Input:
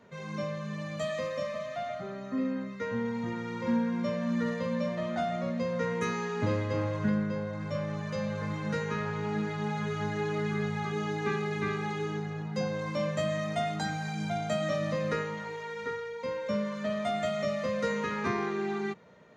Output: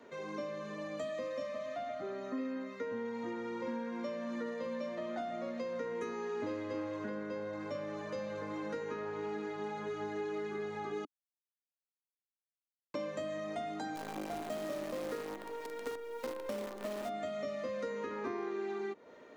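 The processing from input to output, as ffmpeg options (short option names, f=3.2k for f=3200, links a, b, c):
-filter_complex "[0:a]asplit=3[a][b][c];[a]afade=t=out:st=13.95:d=0.02[d];[b]acrusher=bits=6:dc=4:mix=0:aa=0.000001,afade=t=in:st=13.95:d=0.02,afade=t=out:st=17.08:d=0.02[e];[c]afade=t=in:st=17.08:d=0.02[f];[d][e][f]amix=inputs=3:normalize=0,asplit=3[g][h][i];[g]atrim=end=11.05,asetpts=PTS-STARTPTS,afade=t=out:st=11.046:d=0.004:c=hsin[j];[h]atrim=start=11.05:end=12.94,asetpts=PTS-STARTPTS,volume=0[k];[i]atrim=start=12.94,asetpts=PTS-STARTPTS,afade=t=in:d=0.004:c=hsin[l];[j][k][l]concat=n=3:v=0:a=1,lowshelf=f=220:t=q:w=3:g=-9,acrossover=split=330|1100[m][n][o];[m]acompressor=threshold=-47dB:ratio=4[p];[n]acompressor=threshold=-42dB:ratio=4[q];[o]acompressor=threshold=-53dB:ratio=4[r];[p][q][r]amix=inputs=3:normalize=0,volume=1dB"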